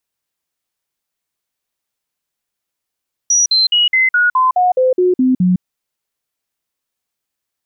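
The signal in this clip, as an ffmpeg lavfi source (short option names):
-f lavfi -i "aevalsrc='0.355*clip(min(mod(t,0.21),0.16-mod(t,0.21))/0.005,0,1)*sin(2*PI*5810*pow(2,-floor(t/0.21)/2)*mod(t,0.21))':d=2.31:s=44100"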